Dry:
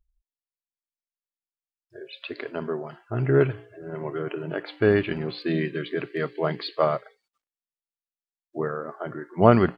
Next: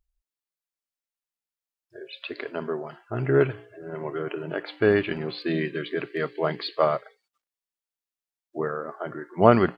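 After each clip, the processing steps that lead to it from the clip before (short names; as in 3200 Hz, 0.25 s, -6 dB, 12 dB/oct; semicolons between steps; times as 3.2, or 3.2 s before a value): low shelf 190 Hz -6.5 dB; gain +1 dB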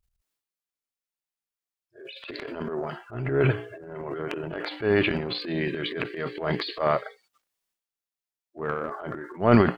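transient shaper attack -9 dB, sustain +11 dB; gain -1.5 dB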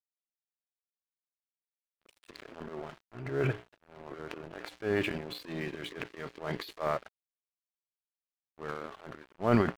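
crossover distortion -37 dBFS; gain -7 dB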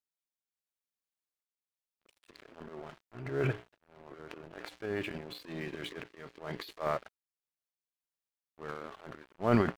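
random-step tremolo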